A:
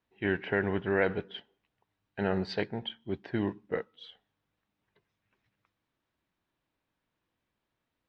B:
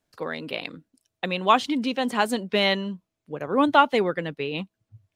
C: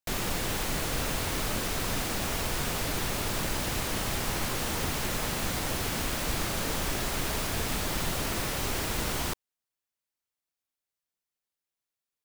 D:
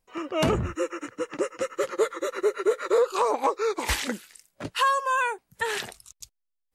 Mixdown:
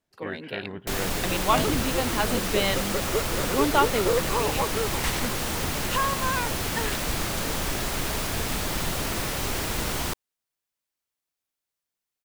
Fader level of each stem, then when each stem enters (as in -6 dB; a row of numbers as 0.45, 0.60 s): -7.0, -4.5, +2.5, -4.0 dB; 0.00, 0.00, 0.80, 1.15 s